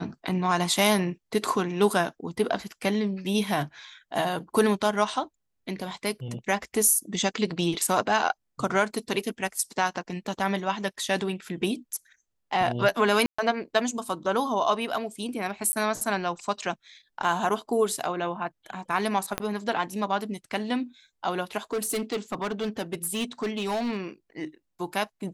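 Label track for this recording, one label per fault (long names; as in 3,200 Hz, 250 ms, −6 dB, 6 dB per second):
13.260000	13.380000	drop-out 125 ms
15.720000	15.730000	drop-out 10 ms
19.380000	19.380000	click −10 dBFS
21.730000	23.980000	clipping −24.5 dBFS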